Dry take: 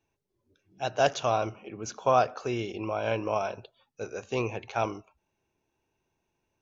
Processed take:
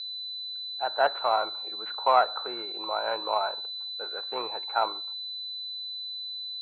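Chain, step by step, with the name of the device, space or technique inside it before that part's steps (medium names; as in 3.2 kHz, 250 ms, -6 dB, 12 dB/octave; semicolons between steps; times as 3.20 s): toy sound module (decimation joined by straight lines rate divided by 4×; class-D stage that switches slowly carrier 4 kHz; cabinet simulation 590–4500 Hz, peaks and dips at 890 Hz +9 dB, 1.4 kHz +9 dB, 2.9 kHz -3 dB)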